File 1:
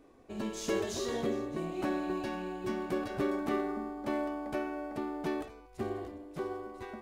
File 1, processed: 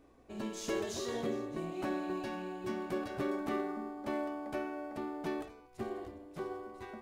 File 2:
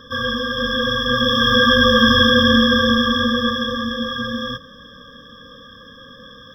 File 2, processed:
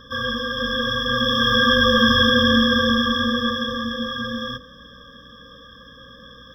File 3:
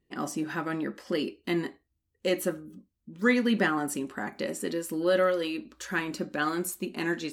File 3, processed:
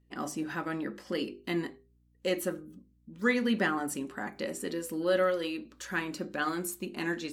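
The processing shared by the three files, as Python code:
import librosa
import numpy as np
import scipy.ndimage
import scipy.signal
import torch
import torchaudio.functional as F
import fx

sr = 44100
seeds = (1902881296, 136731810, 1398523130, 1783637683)

y = fx.hum_notches(x, sr, base_hz=50, count=10)
y = fx.add_hum(y, sr, base_hz=60, snr_db=34)
y = y * librosa.db_to_amplitude(-2.5)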